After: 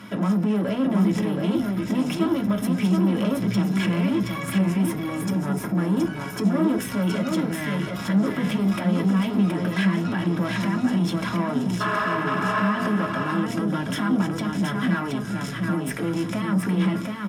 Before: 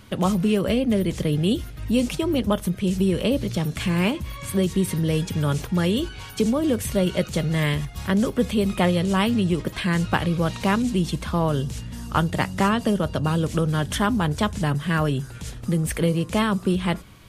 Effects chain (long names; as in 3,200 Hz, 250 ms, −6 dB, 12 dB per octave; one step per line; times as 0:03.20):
0:04.43–0:06.45: parametric band 3,300 Hz −9.5 dB 1.4 octaves
0:11.84–0:12.66: healed spectral selection 380–12,000 Hz after
brickwall limiter −22 dBFS, peak gain reduction 16.5 dB
tube saturation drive 30 dB, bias 0.3
single-tap delay 723 ms −4 dB
convolution reverb RT60 0.30 s, pre-delay 3 ms, DRR 1.5 dB
level +2 dB